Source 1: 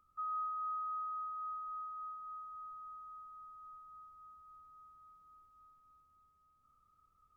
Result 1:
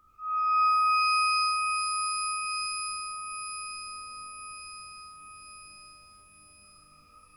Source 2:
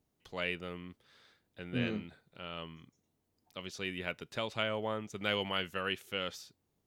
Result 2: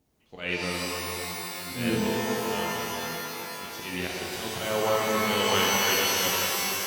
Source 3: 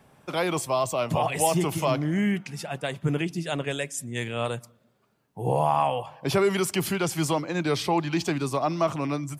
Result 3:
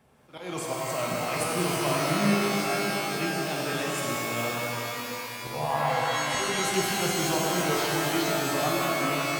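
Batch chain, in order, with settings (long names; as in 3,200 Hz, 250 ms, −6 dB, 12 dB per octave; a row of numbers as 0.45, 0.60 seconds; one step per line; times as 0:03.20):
volume swells 169 ms
reverb with rising layers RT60 3.6 s, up +12 semitones, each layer −2 dB, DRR −3.5 dB
loudness normalisation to −27 LKFS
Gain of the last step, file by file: +8.0, +6.0, −7.0 decibels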